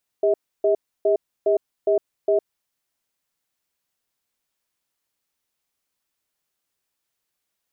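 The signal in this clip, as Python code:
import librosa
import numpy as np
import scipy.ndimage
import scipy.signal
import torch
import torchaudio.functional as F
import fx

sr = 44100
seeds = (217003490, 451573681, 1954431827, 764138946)

y = fx.cadence(sr, length_s=2.45, low_hz=403.0, high_hz=639.0, on_s=0.11, off_s=0.3, level_db=-18.0)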